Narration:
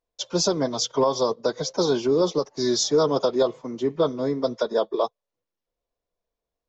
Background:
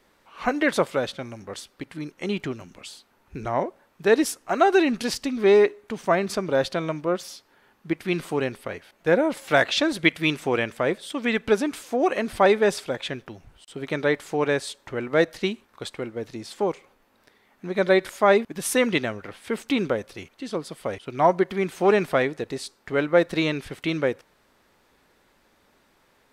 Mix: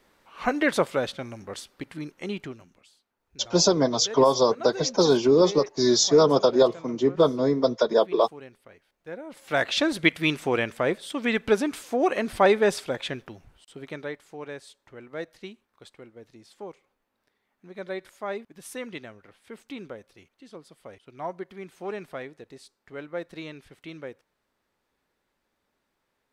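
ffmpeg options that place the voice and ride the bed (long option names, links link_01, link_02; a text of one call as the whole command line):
ffmpeg -i stem1.wav -i stem2.wav -filter_complex "[0:a]adelay=3200,volume=2.5dB[link_01];[1:a]volume=16.5dB,afade=type=out:start_time=1.91:duration=0.96:silence=0.133352,afade=type=in:start_time=9.26:duration=0.56:silence=0.133352,afade=type=out:start_time=13.11:duration=1.07:silence=0.199526[link_02];[link_01][link_02]amix=inputs=2:normalize=0" out.wav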